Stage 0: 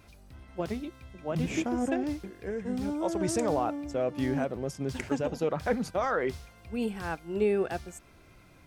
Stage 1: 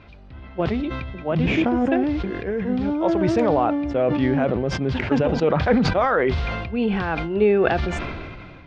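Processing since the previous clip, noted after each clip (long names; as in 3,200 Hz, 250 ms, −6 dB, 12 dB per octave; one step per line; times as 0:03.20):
low-pass filter 3,700 Hz 24 dB per octave
level that may fall only so fast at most 28 dB per second
level +8.5 dB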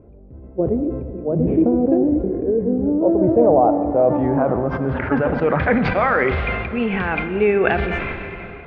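low-pass filter sweep 450 Hz → 2,300 Hz, 0:02.88–0:05.92
on a send at −9 dB: convolution reverb RT60 3.4 s, pre-delay 11 ms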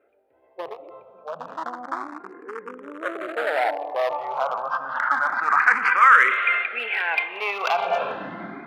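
asymmetric clip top −14.5 dBFS, bottom −8.5 dBFS
high-pass filter sweep 1,200 Hz → 280 Hz, 0:07.68–0:08.28
frequency shifter mixed with the dry sound +0.3 Hz
level +2.5 dB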